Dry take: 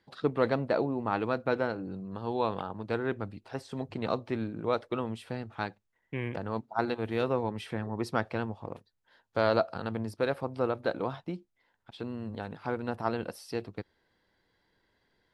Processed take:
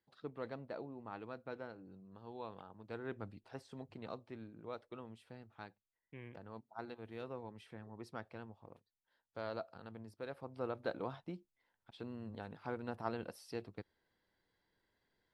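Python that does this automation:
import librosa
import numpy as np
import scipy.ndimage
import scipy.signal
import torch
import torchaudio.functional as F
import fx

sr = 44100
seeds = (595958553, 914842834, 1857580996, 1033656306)

y = fx.gain(x, sr, db=fx.line((2.74, -17.5), (3.28, -9.0), (4.28, -17.0), (10.21, -17.0), (10.8, -9.0)))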